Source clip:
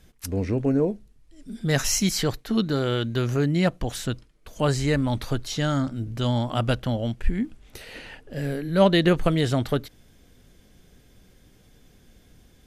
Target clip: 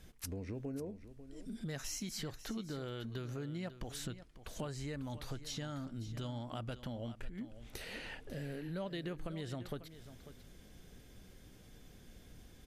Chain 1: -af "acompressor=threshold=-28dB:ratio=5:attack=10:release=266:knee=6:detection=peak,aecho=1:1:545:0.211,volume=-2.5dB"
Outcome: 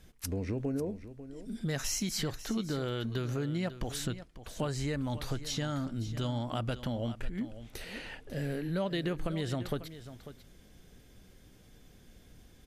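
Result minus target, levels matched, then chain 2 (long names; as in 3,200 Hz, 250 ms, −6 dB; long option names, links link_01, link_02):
downward compressor: peak gain reduction −8.5 dB
-af "acompressor=threshold=-38.5dB:ratio=5:attack=10:release=266:knee=6:detection=peak,aecho=1:1:545:0.211,volume=-2.5dB"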